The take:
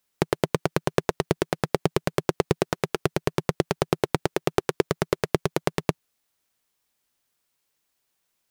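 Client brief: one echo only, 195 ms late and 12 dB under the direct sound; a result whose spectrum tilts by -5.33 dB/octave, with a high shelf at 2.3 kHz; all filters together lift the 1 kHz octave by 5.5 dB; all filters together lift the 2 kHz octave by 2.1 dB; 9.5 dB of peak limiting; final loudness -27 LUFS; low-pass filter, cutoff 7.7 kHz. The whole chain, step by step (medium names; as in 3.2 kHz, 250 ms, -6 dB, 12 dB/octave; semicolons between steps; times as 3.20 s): low-pass 7.7 kHz; peaking EQ 1 kHz +7.5 dB; peaking EQ 2 kHz +3.5 dB; treble shelf 2.3 kHz -7 dB; peak limiter -9 dBFS; delay 195 ms -12 dB; trim +5.5 dB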